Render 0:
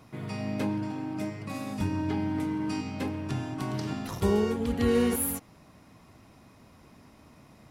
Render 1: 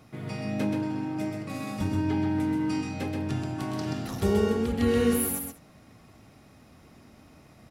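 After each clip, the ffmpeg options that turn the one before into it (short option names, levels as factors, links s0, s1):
-filter_complex "[0:a]bandreject=f=1000:w=7.6,asplit=2[s0][s1];[s1]aecho=0:1:129|202:0.596|0.112[s2];[s0][s2]amix=inputs=2:normalize=0"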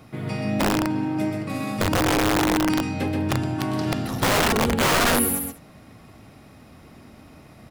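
-filter_complex "[0:a]acrossover=split=1800[s0][s1];[s0]aeval=exprs='(mod(11.2*val(0)+1,2)-1)/11.2':c=same[s2];[s1]equalizer=f=6300:t=o:w=0.6:g=-4.5[s3];[s2][s3]amix=inputs=2:normalize=0,volume=2.11"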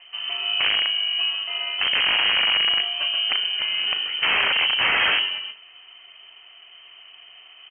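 -filter_complex "[0:a]asplit=2[s0][s1];[s1]adelay=35,volume=0.224[s2];[s0][s2]amix=inputs=2:normalize=0,lowpass=f=2700:t=q:w=0.5098,lowpass=f=2700:t=q:w=0.6013,lowpass=f=2700:t=q:w=0.9,lowpass=f=2700:t=q:w=2.563,afreqshift=-3200"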